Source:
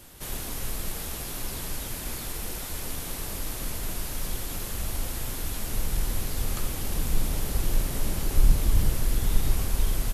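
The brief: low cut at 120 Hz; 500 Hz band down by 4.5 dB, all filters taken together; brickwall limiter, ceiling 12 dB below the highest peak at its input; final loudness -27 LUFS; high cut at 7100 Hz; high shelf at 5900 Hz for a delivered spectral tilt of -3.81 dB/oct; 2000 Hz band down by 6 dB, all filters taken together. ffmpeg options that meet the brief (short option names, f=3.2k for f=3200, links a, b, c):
-af "highpass=120,lowpass=7.1k,equalizer=f=500:t=o:g=-5.5,equalizer=f=2k:t=o:g=-7,highshelf=f=5.9k:g=-4,volume=15dB,alimiter=limit=-17.5dB:level=0:latency=1"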